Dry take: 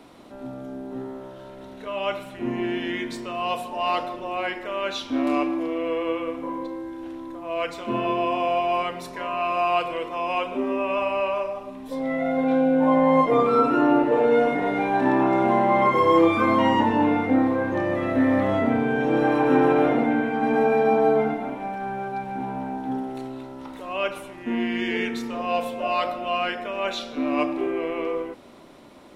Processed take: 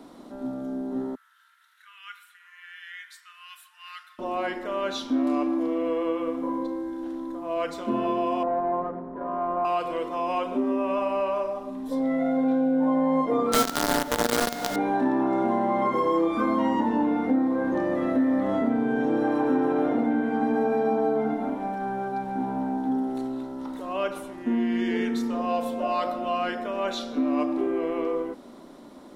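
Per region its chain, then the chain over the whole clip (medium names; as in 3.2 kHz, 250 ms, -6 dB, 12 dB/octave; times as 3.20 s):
1.15–4.19 s: steep high-pass 1.4 kHz 48 dB/octave + peaking EQ 5.2 kHz -10 dB 1.9 oct
8.43–9.65 s: median filter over 25 samples + low-pass 1.7 kHz 24 dB/octave
13.52–14.76 s: comb 1.4 ms, depth 90% + companded quantiser 2-bit
whole clip: fifteen-band graphic EQ 100 Hz -12 dB, 250 Hz +6 dB, 2.5 kHz -9 dB; compression 3:1, threshold -22 dBFS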